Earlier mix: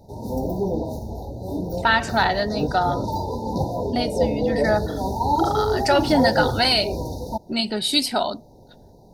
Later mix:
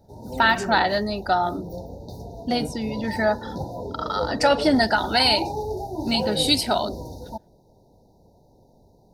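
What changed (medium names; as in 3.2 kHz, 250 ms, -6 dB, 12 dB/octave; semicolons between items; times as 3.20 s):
first voice: entry -1.45 s; background -7.0 dB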